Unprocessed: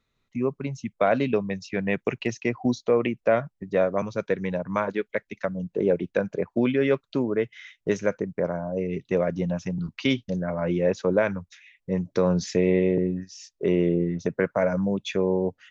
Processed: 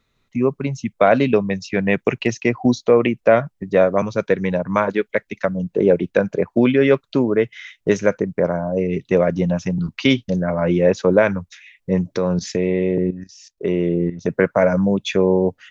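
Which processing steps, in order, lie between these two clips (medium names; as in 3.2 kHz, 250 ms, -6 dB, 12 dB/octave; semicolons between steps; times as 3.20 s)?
12.17–14.28 s: level held to a coarse grid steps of 13 dB; trim +7.5 dB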